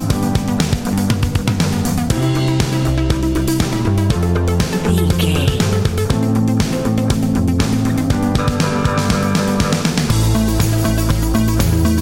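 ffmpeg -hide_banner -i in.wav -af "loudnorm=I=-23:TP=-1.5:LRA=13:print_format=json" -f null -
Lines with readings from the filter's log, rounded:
"input_i" : "-16.1",
"input_tp" : "-3.3",
"input_lra" : "1.0",
"input_thresh" : "-26.1",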